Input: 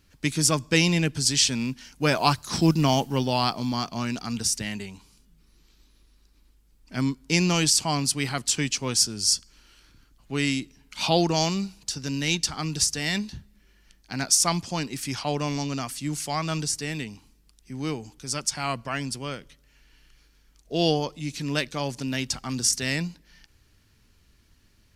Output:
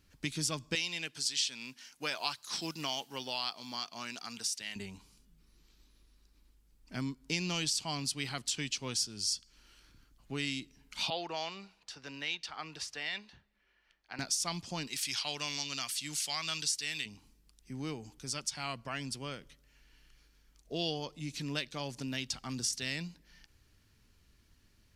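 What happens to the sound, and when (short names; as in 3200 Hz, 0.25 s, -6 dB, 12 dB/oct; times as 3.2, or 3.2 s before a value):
0.75–4.76 HPF 1000 Hz 6 dB/oct
11.1–14.19 three-band isolator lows -18 dB, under 470 Hz, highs -18 dB, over 3500 Hz
14.87–17.06 tilt shelf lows -8.5 dB
whole clip: dynamic EQ 3500 Hz, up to +8 dB, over -40 dBFS, Q 1.1; compressor 2:1, threshold -32 dBFS; gain -5.5 dB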